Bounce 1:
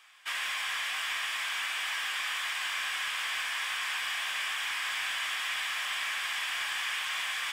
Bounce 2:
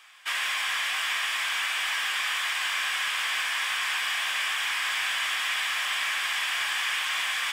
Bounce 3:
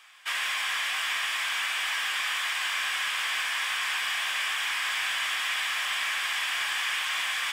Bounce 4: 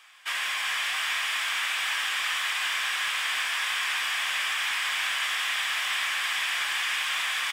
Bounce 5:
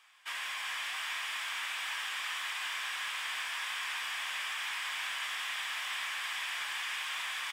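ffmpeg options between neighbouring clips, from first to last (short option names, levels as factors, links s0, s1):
-af "highpass=f=100:p=1,volume=1.78"
-af "acontrast=83,volume=0.398"
-filter_complex "[0:a]asplit=7[s0][s1][s2][s3][s4][s5][s6];[s1]adelay=379,afreqshift=140,volume=0.447[s7];[s2]adelay=758,afreqshift=280,volume=0.214[s8];[s3]adelay=1137,afreqshift=420,volume=0.102[s9];[s4]adelay=1516,afreqshift=560,volume=0.0495[s10];[s5]adelay=1895,afreqshift=700,volume=0.0237[s11];[s6]adelay=2274,afreqshift=840,volume=0.0114[s12];[s0][s7][s8][s9][s10][s11][s12]amix=inputs=7:normalize=0"
-af "equalizer=f=940:t=o:w=0.32:g=4,volume=0.355"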